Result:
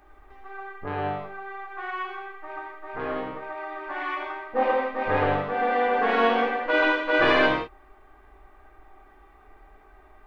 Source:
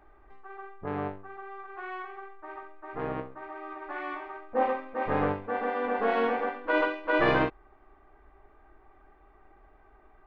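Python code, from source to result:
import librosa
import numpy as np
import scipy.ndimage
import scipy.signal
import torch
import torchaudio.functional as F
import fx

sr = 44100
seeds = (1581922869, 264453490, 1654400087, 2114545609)

y = fx.high_shelf(x, sr, hz=2600.0, db=10.0)
y = fx.rev_gated(y, sr, seeds[0], gate_ms=200, shape='flat', drr_db=-1.5)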